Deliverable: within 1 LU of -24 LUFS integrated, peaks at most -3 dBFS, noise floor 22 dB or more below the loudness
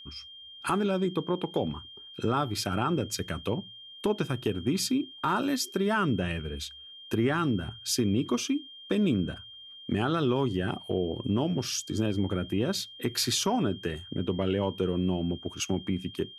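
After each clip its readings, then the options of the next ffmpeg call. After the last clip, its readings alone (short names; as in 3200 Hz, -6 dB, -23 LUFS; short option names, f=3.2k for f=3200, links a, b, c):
steady tone 3200 Hz; tone level -45 dBFS; loudness -29.5 LUFS; peak -15.5 dBFS; loudness target -24.0 LUFS
-> -af "bandreject=f=3.2k:w=30"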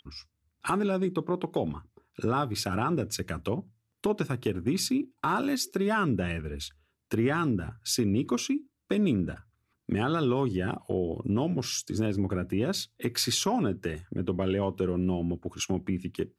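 steady tone none; loudness -29.5 LUFS; peak -15.5 dBFS; loudness target -24.0 LUFS
-> -af "volume=5.5dB"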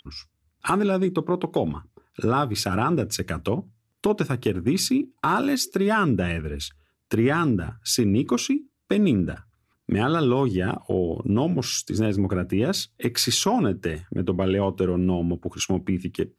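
loudness -24.0 LUFS; peak -10.0 dBFS; noise floor -73 dBFS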